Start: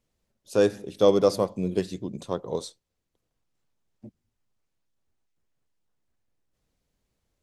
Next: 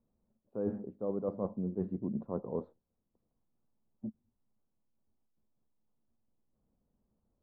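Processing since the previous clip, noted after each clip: peaking EQ 220 Hz +10 dB 0.44 oct; reverse; compression 16:1, threshold -28 dBFS, peak gain reduction 16.5 dB; reverse; low-pass 1.1 kHz 24 dB/octave; trim -2.5 dB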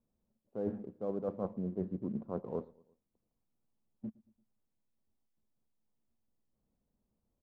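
in parallel at -11 dB: crossover distortion -50.5 dBFS; on the sum: feedback delay 114 ms, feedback 51%, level -23 dB; loudspeaker Doppler distortion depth 0.17 ms; trim -3.5 dB

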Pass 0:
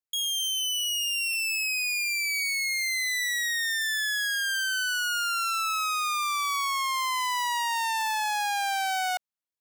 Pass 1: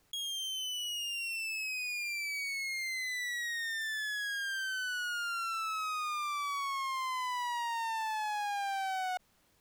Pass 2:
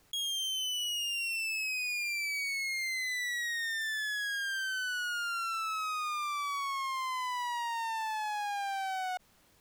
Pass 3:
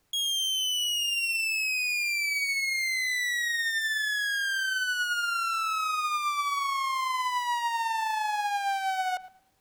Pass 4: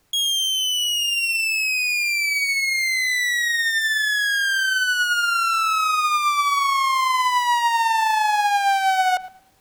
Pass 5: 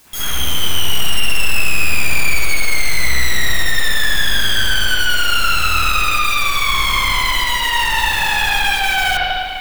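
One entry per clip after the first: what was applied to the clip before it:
tilt EQ -2.5 dB/octave; level flattener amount 50%; trim -7 dB
peak limiter -32.5 dBFS, peak gain reduction 6 dB; trim +4.5 dB
tape echo 111 ms, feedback 37%, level -9 dB, low-pass 2.1 kHz; upward expansion 1.5:1, over -57 dBFS; trim +6.5 dB
gain riding; trim +8 dB
word length cut 8-bit, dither triangular; integer overflow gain 20 dB; reverberation RT60 2.2 s, pre-delay 49 ms, DRR -11 dB; trim -1 dB

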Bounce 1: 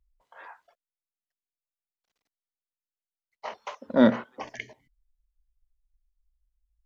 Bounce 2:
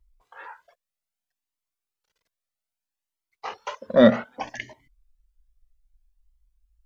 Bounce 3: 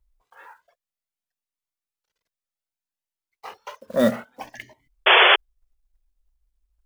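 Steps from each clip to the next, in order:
Shepard-style flanger rising 0.63 Hz; trim +9 dB
block-companded coder 5-bit; painted sound noise, 5.06–5.36 s, 350–3500 Hz -9 dBFS; trim -4.5 dB

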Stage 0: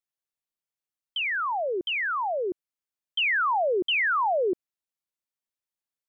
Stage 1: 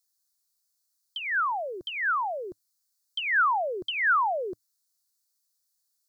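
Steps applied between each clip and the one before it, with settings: FFT filter 110 Hz 0 dB, 300 Hz -15 dB, 1.5 kHz +1 dB, 2.8 kHz -13 dB, 4.3 kHz +14 dB; trim +3 dB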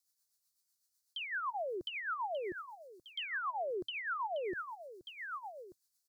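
delay 1187 ms -17 dB; rotary cabinet horn 8 Hz; reverse; compression 16:1, threshold -35 dBFS, peak gain reduction 14 dB; reverse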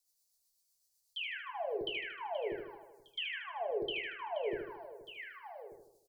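touch-sensitive phaser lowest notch 230 Hz, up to 1.3 kHz, full sweep at -44 dBFS; feedback delay 77 ms, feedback 54%, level -6 dB; on a send at -3.5 dB: reverberation RT60 0.20 s, pre-delay 4 ms; on the sum: trim +1 dB

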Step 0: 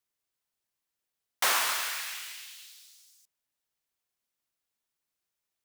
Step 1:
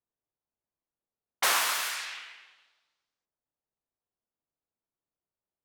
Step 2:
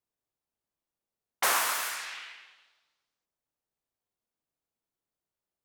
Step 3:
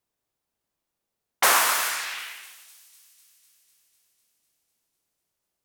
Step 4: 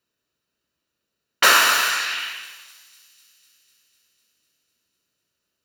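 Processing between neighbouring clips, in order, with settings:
level-controlled noise filter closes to 860 Hz, open at -28 dBFS; trim +1 dB
dynamic bell 3.6 kHz, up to -6 dB, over -41 dBFS, Q 0.76; trim +1.5 dB
feedback echo behind a high-pass 250 ms, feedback 70%, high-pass 4.8 kHz, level -19.5 dB; trim +7 dB
reverberation RT60 1.0 s, pre-delay 151 ms, DRR 16.5 dB; trim +4 dB

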